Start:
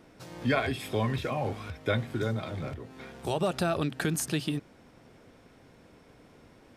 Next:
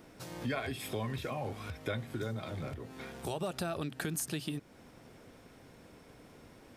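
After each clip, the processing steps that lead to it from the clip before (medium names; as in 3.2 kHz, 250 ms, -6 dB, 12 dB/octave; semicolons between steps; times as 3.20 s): treble shelf 9.1 kHz +9 dB; compression 2:1, threshold -39 dBFS, peak gain reduction 9.5 dB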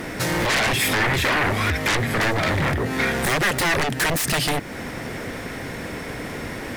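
sine folder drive 17 dB, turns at -22 dBFS; word length cut 10-bit, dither none; peaking EQ 1.9 kHz +9 dB 0.54 oct; trim +3 dB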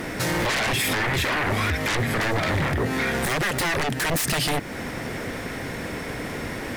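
peak limiter -17 dBFS, peak gain reduction 5.5 dB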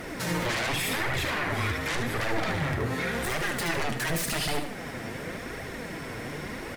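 feedback delay 75 ms, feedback 37%, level -7 dB; reverberation RT60 0.50 s, pre-delay 17 ms, DRR 12.5 dB; flange 0.89 Hz, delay 1.3 ms, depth 8 ms, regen +40%; trim -2.5 dB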